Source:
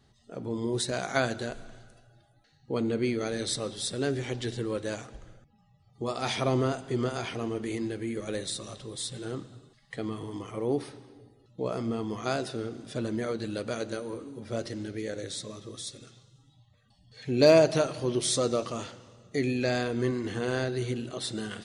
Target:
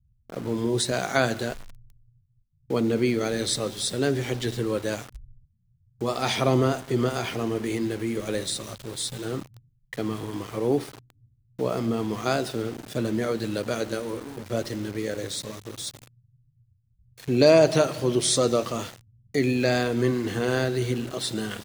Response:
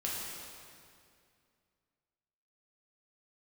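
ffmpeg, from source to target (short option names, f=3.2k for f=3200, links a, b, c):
-filter_complex "[0:a]acrossover=split=120[a][b];[b]aeval=exprs='val(0)*gte(abs(val(0)),0.00708)':c=same[c];[a][c]amix=inputs=2:normalize=0,alimiter=level_in=10dB:limit=-1dB:release=50:level=0:latency=1,volume=-5dB"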